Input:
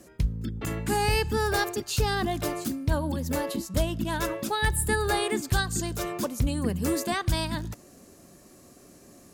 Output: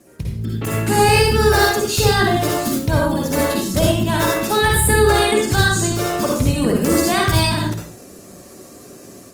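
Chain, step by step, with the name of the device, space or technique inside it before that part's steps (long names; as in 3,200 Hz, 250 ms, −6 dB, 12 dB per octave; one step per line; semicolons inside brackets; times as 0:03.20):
0:04.82–0:06.72: high-shelf EQ 9,800 Hz −4.5 dB
far-field microphone of a smart speaker (convolution reverb RT60 0.45 s, pre-delay 49 ms, DRR −2 dB; high-pass filter 84 Hz 12 dB per octave; automatic gain control gain up to 7 dB; level +1.5 dB; Opus 24 kbit/s 48,000 Hz)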